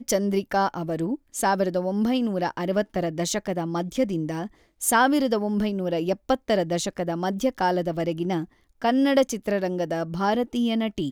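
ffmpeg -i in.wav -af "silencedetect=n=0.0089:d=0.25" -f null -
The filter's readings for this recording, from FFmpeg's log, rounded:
silence_start: 4.47
silence_end: 4.81 | silence_duration: 0.34
silence_start: 8.45
silence_end: 8.82 | silence_duration: 0.36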